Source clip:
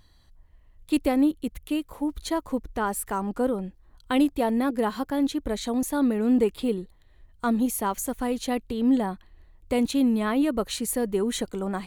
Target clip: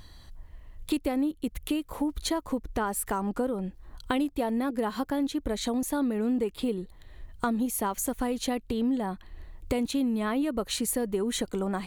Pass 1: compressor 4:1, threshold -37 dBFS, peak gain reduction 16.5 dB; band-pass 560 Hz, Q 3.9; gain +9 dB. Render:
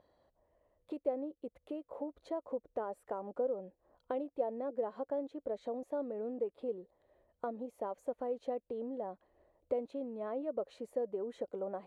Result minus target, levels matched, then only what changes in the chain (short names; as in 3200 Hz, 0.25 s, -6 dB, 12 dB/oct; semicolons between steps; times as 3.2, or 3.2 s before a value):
500 Hz band +6.0 dB
remove: band-pass 560 Hz, Q 3.9